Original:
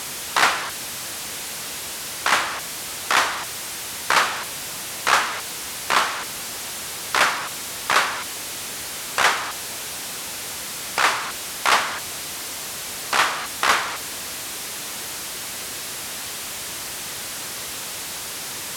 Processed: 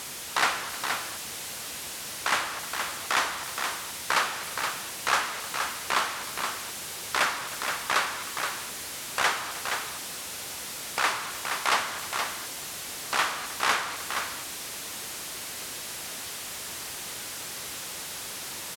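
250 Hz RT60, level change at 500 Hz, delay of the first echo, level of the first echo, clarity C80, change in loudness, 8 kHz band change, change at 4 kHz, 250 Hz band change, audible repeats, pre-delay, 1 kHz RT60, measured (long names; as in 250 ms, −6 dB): no reverb audible, −6.0 dB, 309 ms, −17.5 dB, no reverb audible, −6.0 dB, −6.0 dB, −6.0 dB, −6.0 dB, 2, no reverb audible, no reverb audible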